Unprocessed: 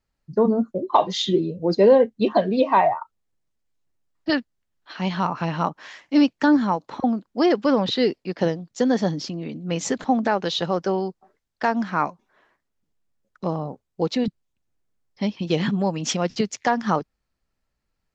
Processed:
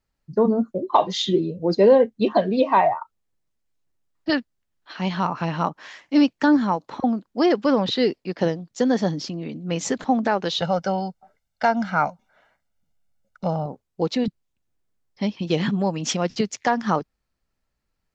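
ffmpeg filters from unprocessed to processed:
ffmpeg -i in.wav -filter_complex "[0:a]asettb=1/sr,asplit=3[link_01][link_02][link_03];[link_01]atrim=end=10.614[link_04];[link_02]atrim=start=10.61:end=13.66,asetpts=PTS-STARTPTS,afade=type=in:duration=0.004:curve=qsin,afade=type=out:start_time=3.046:duration=0.004:curve=qsin,aecho=1:1:1.4:0.72,atrim=end_sample=134505[link_05];[link_03]atrim=start=13.656[link_06];[link_04][link_05]acrossfade=duration=0.004:curve1=hsin:curve2=qsin[link_07];[link_07][link_06]acrossfade=duration=0.004:curve1=qsin:curve2=hsin" out.wav

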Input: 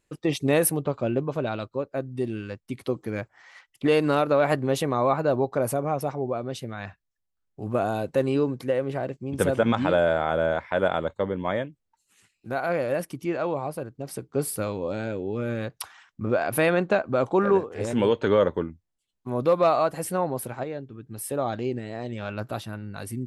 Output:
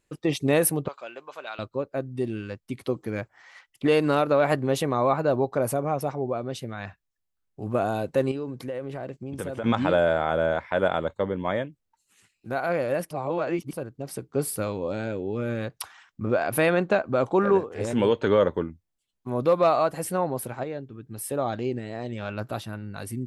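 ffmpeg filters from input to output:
ffmpeg -i in.wav -filter_complex "[0:a]asettb=1/sr,asplit=3[link_01][link_02][link_03];[link_01]atrim=end=0.884[link_04];[link_02]atrim=start=0.88:end=1.59,asetpts=PTS-STARTPTS,afade=type=in:duration=0.004:curve=qsin,afade=type=out:start_time=0.706:duration=0.004:curve=qsin,highpass=1100[link_05];[link_03]atrim=start=1.586[link_06];[link_04][link_05]acrossfade=duration=0.004:curve1=hsin:curve2=qsin[link_07];[link_07][link_06]acrossfade=duration=0.004:curve1=qsin:curve2=hsin,asettb=1/sr,asplit=3[link_08][link_09][link_10];[link_08]atrim=end=8.314[link_11];[link_09]atrim=start=8.31:end=9.64,asetpts=PTS-STARTPTS,afade=type=in:duration=0.004:curve=qsin,afade=type=out:start_time=1.326:duration=0.004:curve=qsin,acompressor=threshold=-31dB:ratio=3:attack=3.2:release=140:knee=1:detection=peak[link_12];[link_10]atrim=start=9.636[link_13];[link_11][link_12]acrossfade=duration=0.004:curve1=hsin:curve2=qsin[link_14];[link_14][link_13]acrossfade=duration=0.004:curve1=qsin:curve2=hsin,asplit=3[link_15][link_16][link_17];[link_15]atrim=end=13.112[link_18];[link_16]atrim=start=13.108:end=13.732,asetpts=PTS-STARTPTS,areverse[link_19];[link_17]atrim=start=13.728[link_20];[link_18][link_19]acrossfade=duration=0.004:curve1=hsin:curve2=hsin[link_21];[link_21][link_20]acrossfade=duration=0.004:curve1=hsin:curve2=hsin" out.wav

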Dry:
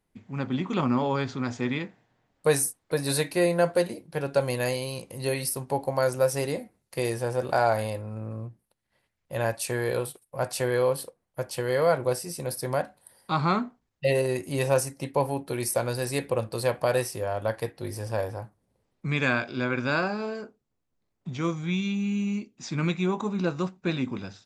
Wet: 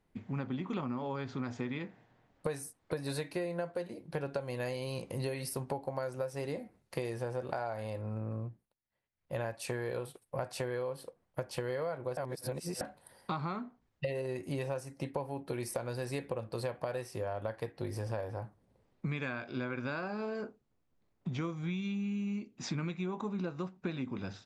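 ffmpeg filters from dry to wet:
ffmpeg -i in.wav -filter_complex "[0:a]asplit=5[link_01][link_02][link_03][link_04][link_05];[link_01]atrim=end=8.75,asetpts=PTS-STARTPTS,afade=type=out:start_time=8.38:duration=0.37:silence=0.133352[link_06];[link_02]atrim=start=8.75:end=9.11,asetpts=PTS-STARTPTS,volume=-17.5dB[link_07];[link_03]atrim=start=9.11:end=12.172,asetpts=PTS-STARTPTS,afade=type=in:duration=0.37:silence=0.133352[link_08];[link_04]atrim=start=12.168:end=12.812,asetpts=PTS-STARTPTS,areverse[link_09];[link_05]atrim=start=12.808[link_10];[link_06][link_07][link_08]concat=n=3:v=0:a=1[link_11];[link_11][link_09]acrossfade=duration=0.004:curve1=hsin:curve2=hsin[link_12];[link_12][link_10]acrossfade=duration=0.004:curve1=hsin:curve2=hsin,lowpass=frequency=3100:poles=1,acompressor=threshold=-36dB:ratio=12,volume=3dB" out.wav

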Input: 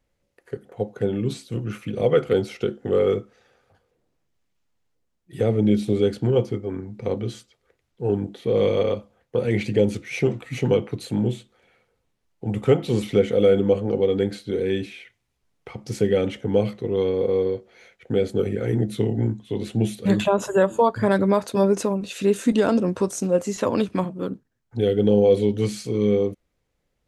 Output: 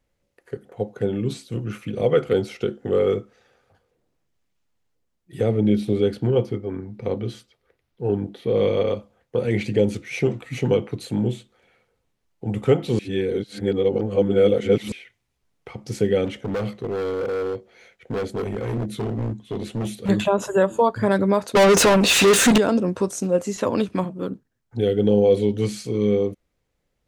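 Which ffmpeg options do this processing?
ffmpeg -i in.wav -filter_complex "[0:a]asettb=1/sr,asplit=3[link_01][link_02][link_03];[link_01]atrim=end=5.514[link_04];[link_02]atrim=start=5.51:end=8.88,asetpts=PTS-STARTPTS,afade=type=in:duration=0.004:curve=qsin,afade=type=out:start_time=3.366:duration=0.004:curve=qsin,equalizer=frequency=7200:width_type=o:width=0.65:gain=-6.5[link_05];[link_03]atrim=start=8.876[link_06];[link_04][link_05]acrossfade=duration=0.004:curve1=hsin:curve2=qsin[link_07];[link_07][link_06]acrossfade=duration=0.004:curve1=qsin:curve2=hsin,asettb=1/sr,asplit=3[link_08][link_09][link_10];[link_08]atrim=end=16.254[link_11];[link_09]atrim=start=16.25:end=20.09,asetpts=PTS-STARTPTS,afade=type=in:duration=0.004:curve=qsin,afade=type=out:start_time=3.836:duration=0.004:curve=qsin,asoftclip=type=hard:threshold=-22.5dB[link_12];[link_10]atrim=start=20.086[link_13];[link_11][link_12]acrossfade=duration=0.004:curve1=hsin:curve2=qsin[link_14];[link_14][link_13]acrossfade=duration=0.004:curve1=qsin:curve2=hsin,asettb=1/sr,asplit=3[link_15][link_16][link_17];[link_15]atrim=end=21.554[link_18];[link_16]atrim=start=21.55:end=22.58,asetpts=PTS-STARTPTS,afade=type=in:duration=0.004:curve=qsin,afade=type=out:start_time=1.026:duration=0.004:curve=qsin,asplit=2[link_19][link_20];[link_20]highpass=frequency=720:poles=1,volume=33dB,asoftclip=type=tanh:threshold=-7.5dB[link_21];[link_19][link_21]amix=inputs=2:normalize=0,lowpass=frequency=7400:poles=1,volume=-6dB[link_22];[link_17]atrim=start=22.576[link_23];[link_18][link_22]acrossfade=duration=0.004:curve1=hsin:curve2=qsin[link_24];[link_24][link_23]acrossfade=duration=0.004:curve1=qsin:curve2=hsin,asplit=3[link_25][link_26][link_27];[link_25]atrim=end=12.992[link_28];[link_26]atrim=start=12.988:end=14.922,asetpts=PTS-STARTPTS,areverse[link_29];[link_27]atrim=start=14.918[link_30];[link_28][link_29]acrossfade=duration=0.004:curve1=hsin:curve2=hsin[link_31];[link_31][link_30]acrossfade=duration=0.004:curve1=hsin:curve2=hsin" out.wav

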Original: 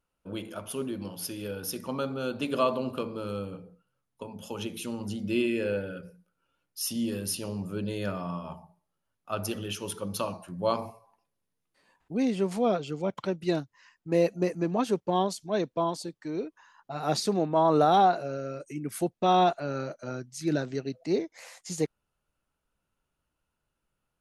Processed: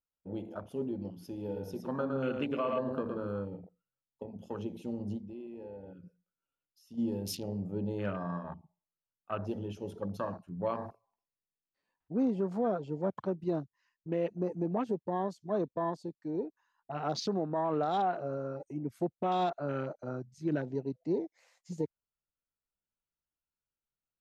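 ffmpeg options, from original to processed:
ffmpeg -i in.wav -filter_complex "[0:a]asettb=1/sr,asplit=3[link_01][link_02][link_03];[link_01]atrim=end=1.374[link_04];[link_02]atrim=start=1.37:end=3.27,asetpts=PTS-STARTPTS,afade=type=in:duration=0.004:curve=qsin,afade=type=out:start_time=1.896:duration=0.004:curve=qsin,aecho=1:1:113:0.531,atrim=end_sample=83790[link_05];[link_03]atrim=start=3.266[link_06];[link_04][link_05]acrossfade=duration=0.004:curve1=hsin:curve2=qsin[link_07];[link_07][link_06]acrossfade=duration=0.004:curve1=qsin:curve2=hsin,asplit=3[link_08][link_09][link_10];[link_08]afade=type=out:start_time=5.17:duration=0.02[link_11];[link_09]acompressor=threshold=-44dB:ratio=3:attack=3.2:release=140:knee=1:detection=peak,afade=type=in:start_time=5.17:duration=0.02,afade=type=out:start_time=6.97:duration=0.02[link_12];[link_10]afade=type=in:start_time=6.97:duration=0.02[link_13];[link_11][link_12][link_13]amix=inputs=3:normalize=0,asettb=1/sr,asplit=3[link_14][link_15][link_16];[link_14]atrim=end=8.434[link_17];[link_15]atrim=start=8.43:end=9.47,asetpts=PTS-STARTPTS,afade=type=in:duration=0.004:curve=qsin,afade=type=out:start_time=1.036:duration=0.004:curve=qsin,lowpass=3500[link_18];[link_16]atrim=start=9.466[link_19];[link_17][link_18]acrossfade=duration=0.004:curve1=hsin:curve2=qsin[link_20];[link_20][link_19]acrossfade=duration=0.004:curve1=qsin:curve2=hsin,afwtdn=0.0126,equalizer=frequency=10000:width_type=o:width=0.42:gain=-12,alimiter=limit=-20.5dB:level=0:latency=1:release=123,volume=-2dB" out.wav

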